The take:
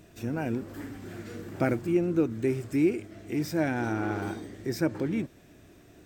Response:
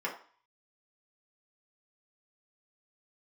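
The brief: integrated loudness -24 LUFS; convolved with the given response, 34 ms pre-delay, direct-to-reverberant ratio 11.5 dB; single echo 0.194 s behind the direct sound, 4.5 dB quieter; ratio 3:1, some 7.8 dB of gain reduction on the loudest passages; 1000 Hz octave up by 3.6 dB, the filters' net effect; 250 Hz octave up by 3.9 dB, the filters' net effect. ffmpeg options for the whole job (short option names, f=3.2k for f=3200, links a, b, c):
-filter_complex "[0:a]equalizer=f=250:t=o:g=5,equalizer=f=1k:t=o:g=5,acompressor=threshold=-27dB:ratio=3,aecho=1:1:194:0.596,asplit=2[a][b];[1:a]atrim=start_sample=2205,adelay=34[c];[b][c]afir=irnorm=-1:irlink=0,volume=-17.5dB[d];[a][d]amix=inputs=2:normalize=0,volume=6.5dB"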